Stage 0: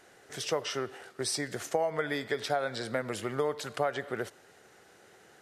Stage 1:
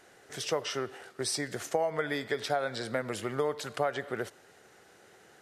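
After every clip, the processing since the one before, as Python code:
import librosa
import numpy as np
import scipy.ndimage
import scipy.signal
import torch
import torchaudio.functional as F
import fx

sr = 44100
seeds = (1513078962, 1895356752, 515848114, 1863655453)

y = x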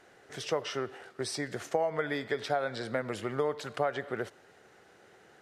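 y = fx.high_shelf(x, sr, hz=6000.0, db=-10.5)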